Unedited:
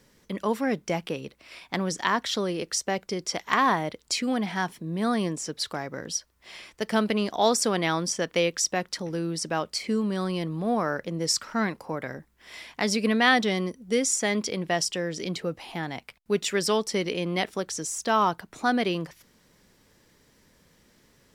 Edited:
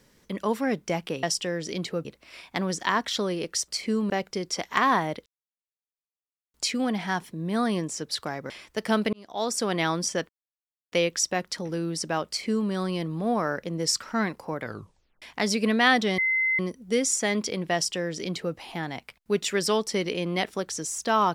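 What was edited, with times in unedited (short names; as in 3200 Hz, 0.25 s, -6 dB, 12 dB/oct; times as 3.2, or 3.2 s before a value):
4.02 insert silence 1.28 s
5.98–6.54 cut
7.17–7.83 fade in
8.33 insert silence 0.63 s
9.69–10.11 copy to 2.86
12.03 tape stop 0.60 s
13.59 add tone 2060 Hz -21 dBFS 0.41 s
14.74–15.56 copy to 1.23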